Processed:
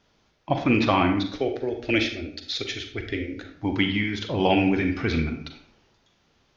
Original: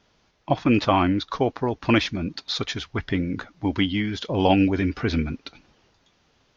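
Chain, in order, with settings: dynamic bell 2.2 kHz, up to +6 dB, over -43 dBFS, Q 2.2; 1.28–3.49 s: static phaser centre 430 Hz, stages 4; reverberation RT60 0.55 s, pre-delay 35 ms, DRR 5 dB; trim -2.5 dB

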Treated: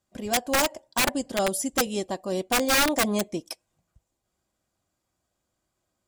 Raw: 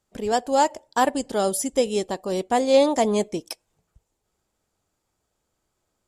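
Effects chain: comb of notches 440 Hz; integer overflow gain 14.5 dB; trim -1.5 dB

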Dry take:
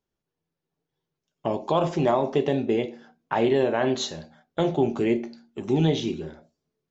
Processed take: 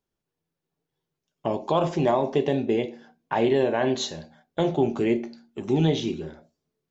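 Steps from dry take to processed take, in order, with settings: 1.94–4.67 s: band-stop 1.3 kHz, Q 8

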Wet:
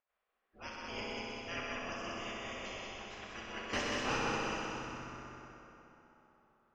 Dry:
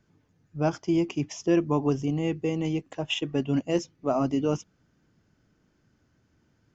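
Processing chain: coarse spectral quantiser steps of 30 dB; band-stop 910 Hz, Q 12; spectral gate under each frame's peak -20 dB weak; level-controlled noise filter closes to 1.9 kHz, open at -44.5 dBFS; 3.73–4.17 s: waveshaping leveller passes 5; distance through air 150 m; on a send: multi-head delay 63 ms, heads all three, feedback 65%, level -6.5 dB; on the sum: plate-style reverb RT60 3.6 s, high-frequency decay 0.6×, DRR -0.5 dB; trim -1 dB

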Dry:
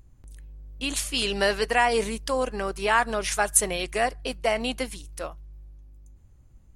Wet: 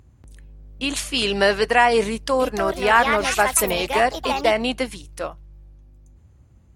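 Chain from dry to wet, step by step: high-pass 58 Hz 24 dB/octave; treble shelf 6.2 kHz -8.5 dB; 2.06–4.75 s: ever faster or slower copies 337 ms, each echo +4 st, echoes 2, each echo -6 dB; trim +6 dB

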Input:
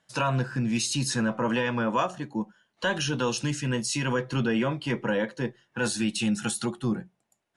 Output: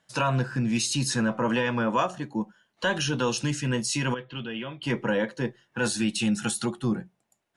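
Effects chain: 4.14–4.83 s: four-pole ladder low-pass 3.5 kHz, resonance 65%; trim +1 dB

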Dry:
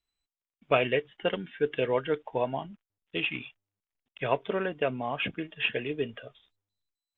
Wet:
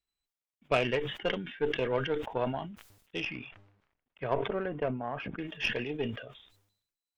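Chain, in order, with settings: 3.24–5.37 s: low-pass 2.1 kHz -> 1.5 kHz 12 dB/octave; Chebyshev shaper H 6 -22 dB, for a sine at -9.5 dBFS; decay stretcher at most 72 dB/s; trim -4 dB

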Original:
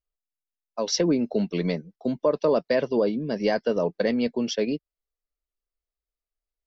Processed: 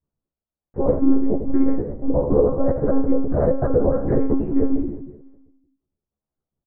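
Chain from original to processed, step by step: time reversed locally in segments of 126 ms; reverb removal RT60 1.1 s; harmony voices -4 st -17 dB, -3 st -2 dB; dynamic bell 150 Hz, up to -5 dB, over -38 dBFS, Q 2.5; compression 12:1, threshold -24 dBFS, peak gain reduction 10.5 dB; feedback delay 174 ms, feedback 53%, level -19 dB; reverberation RT60 0.70 s, pre-delay 3 ms, DRR -6 dB; monotone LPC vocoder at 8 kHz 270 Hz; Gaussian low-pass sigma 8.2 samples; doubling 14 ms -2 dB; trim -3 dB

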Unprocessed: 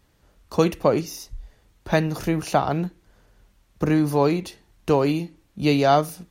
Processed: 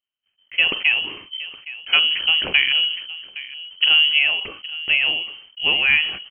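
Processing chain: 1.93–4.19 s: bass shelf 260 Hz +8.5 dB; gate -53 dBFS, range -30 dB; echo from a far wall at 140 m, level -16 dB; frequency inversion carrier 3.1 kHz; decay stretcher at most 83 dB/s

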